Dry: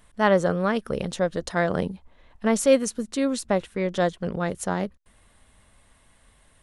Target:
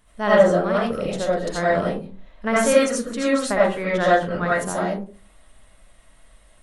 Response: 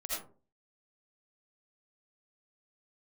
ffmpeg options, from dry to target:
-filter_complex "[0:a]asettb=1/sr,asplit=3[s0][s1][s2];[s0]atrim=end=2.474[s3];[s1]atrim=start=2.47:end=4.63,asetpts=PTS-STARTPTS,afade=t=in:d=0.004:c=qsin,afade=t=out:st=2.156:d=0.004:c=qsin,equalizer=f=1500:t=o:w=1.3:g=9[s4];[s2]atrim=start=4.626[s5];[s3][s4]acrossfade=d=0.004:c1=hsin:c2=qsin[s6];[s6][s5]acrossfade=d=0.004:c1=qsin:c2=hsin[s7];[1:a]atrim=start_sample=2205[s8];[s7][s8]afir=irnorm=-1:irlink=0,volume=1.12"

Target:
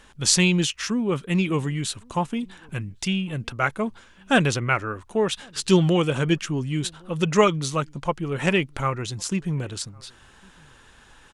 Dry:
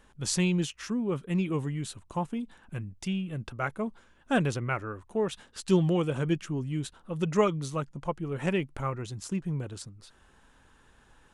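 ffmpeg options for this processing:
-filter_complex "[0:a]equalizer=f=4100:w=0.37:g=7.5,asplit=2[s0][s1];[s1]adelay=1108,volume=0.0355,highshelf=f=4000:g=-24.9[s2];[s0][s2]amix=inputs=2:normalize=0,volume=1.88"

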